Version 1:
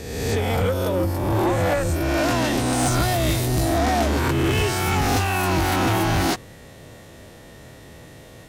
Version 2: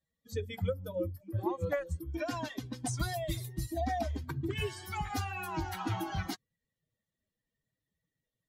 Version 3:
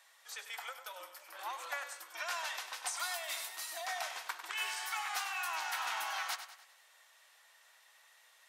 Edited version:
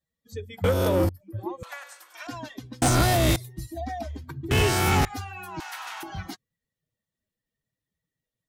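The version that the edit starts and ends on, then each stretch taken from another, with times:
2
0.64–1.09 s: from 1
1.63–2.27 s: from 3
2.82–3.36 s: from 1
4.51–5.05 s: from 1
5.60–6.03 s: from 3

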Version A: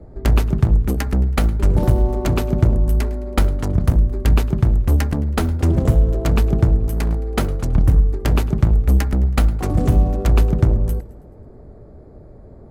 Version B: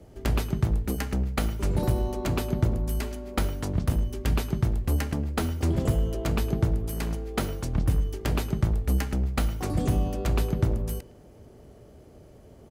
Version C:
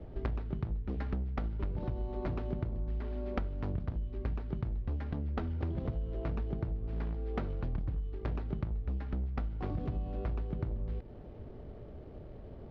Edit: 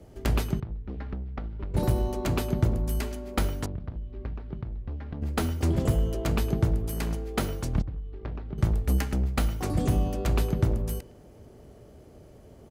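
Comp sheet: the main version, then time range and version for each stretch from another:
B
0.60–1.74 s: from C
3.66–5.22 s: from C
7.82–8.58 s: from C
not used: A

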